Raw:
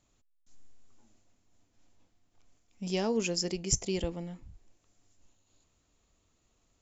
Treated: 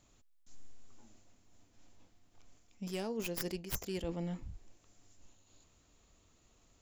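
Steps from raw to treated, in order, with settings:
stylus tracing distortion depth 0.38 ms
reversed playback
downward compressor 16 to 1, threshold −39 dBFS, peak gain reduction 17.5 dB
reversed playback
level +4.5 dB

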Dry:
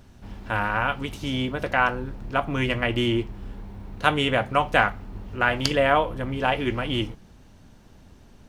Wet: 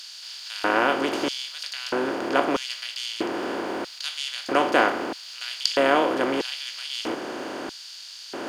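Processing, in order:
compressor on every frequency bin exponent 0.4
auto-filter high-pass square 0.78 Hz 320–4,300 Hz
level −5.5 dB

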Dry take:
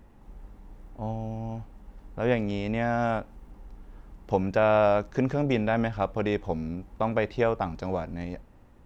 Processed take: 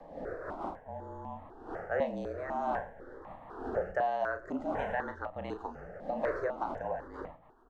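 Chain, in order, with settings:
wind on the microphone 510 Hz −34 dBFS
frequency shifter −30 Hz
bass and treble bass −12 dB, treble −7 dB
downward compressor 2.5 to 1, threshold −27 dBFS, peak gain reduction 6.5 dB
rotating-speaker cabinet horn 1.2 Hz, later 6.3 Hz, at 0:07.21
change of speed 1.15×
high shelf with overshoot 2,000 Hz −6 dB, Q 3
double-tracking delay 35 ms −8 dB
on a send: single-tap delay 109 ms −20 dB
on the sum: step-sequenced phaser 4 Hz 380–1,500 Hz

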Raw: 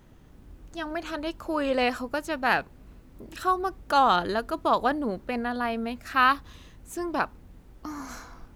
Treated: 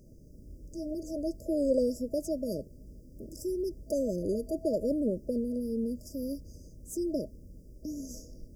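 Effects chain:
brick-wall band-stop 650–4,700 Hz

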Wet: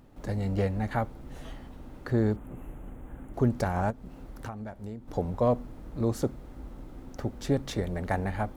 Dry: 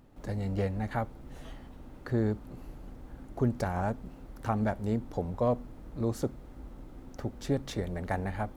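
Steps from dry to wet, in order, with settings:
0:02.36–0:03.34: Butterworth band-reject 4,800 Hz, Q 1.1
0:03.90–0:05.08: downward compressor 10 to 1, threshold −39 dBFS, peak gain reduction 15 dB
level +3 dB

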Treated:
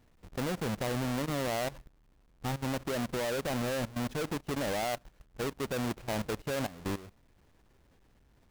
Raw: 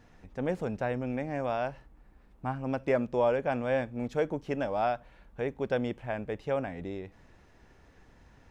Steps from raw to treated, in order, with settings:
each half-wave held at its own peak
output level in coarse steps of 16 dB

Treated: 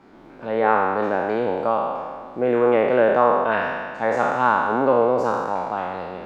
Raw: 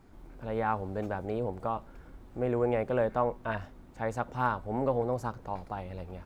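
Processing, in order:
peak hold with a decay on every bin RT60 1.77 s
three-way crossover with the lows and the highs turned down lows −23 dB, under 170 Hz, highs −18 dB, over 5,200 Hz
level +9 dB

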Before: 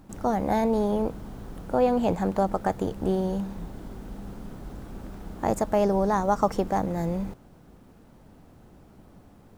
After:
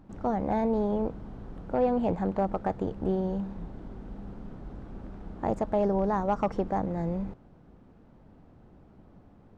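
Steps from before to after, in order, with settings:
gain into a clipping stage and back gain 15 dB
head-to-tape spacing loss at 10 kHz 23 dB
level −2 dB

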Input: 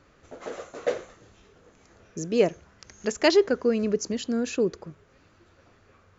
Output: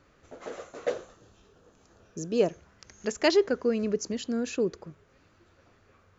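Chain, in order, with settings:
0:00.90–0:02.50: parametric band 2,100 Hz −10 dB 0.34 octaves
level −3 dB

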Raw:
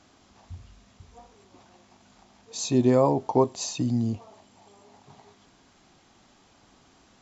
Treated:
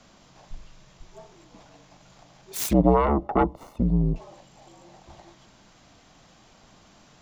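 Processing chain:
phase distortion by the signal itself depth 0.98 ms
frequency shifter −68 Hz
0:02.73–0:04.16: Savitzky-Golay smoothing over 65 samples
level +4 dB

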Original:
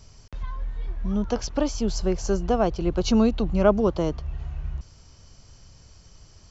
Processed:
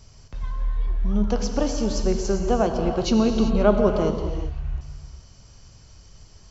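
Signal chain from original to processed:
reverb whose tail is shaped and stops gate 420 ms flat, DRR 4 dB

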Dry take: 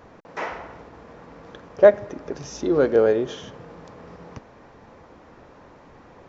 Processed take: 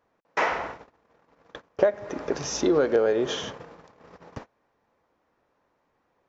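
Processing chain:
noise gate −40 dBFS, range −28 dB
low-shelf EQ 320 Hz −8.5 dB
downward compressor 12 to 1, threshold −25 dBFS, peak gain reduction 17 dB
level +7.5 dB

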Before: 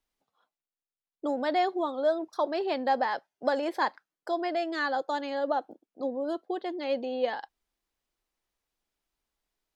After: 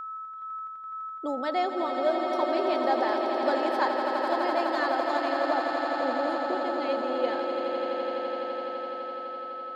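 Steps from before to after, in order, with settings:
steady tone 1,300 Hz −33 dBFS
echo that builds up and dies away 84 ms, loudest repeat 8, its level −9 dB
level −1.5 dB

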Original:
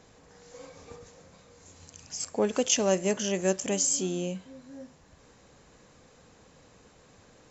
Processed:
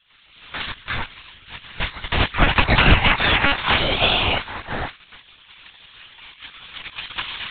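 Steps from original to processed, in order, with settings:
sub-octave generator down 2 octaves, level −4 dB
camcorder AGC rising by 5.9 dB per second
gate on every frequency bin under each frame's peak −25 dB weak
high-shelf EQ 3,100 Hz −2.5 dB
noise gate −59 dBFS, range −8 dB
one-pitch LPC vocoder at 8 kHz 280 Hz
0:00.66–0:03.15: low-shelf EQ 180 Hz +8.5 dB
boost into a limiter +33.5 dB
level −1.5 dB

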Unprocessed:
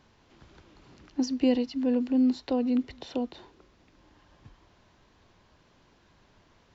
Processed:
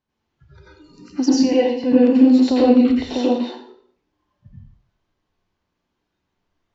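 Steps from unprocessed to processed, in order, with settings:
noise reduction from a noise print of the clip's start 28 dB
0:01.34–0:01.84: three-way crossover with the lows and the highs turned down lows −14 dB, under 460 Hz, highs −13 dB, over 2,400 Hz
dense smooth reverb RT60 0.59 s, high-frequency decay 0.9×, pre-delay 75 ms, DRR −8 dB
level +5.5 dB

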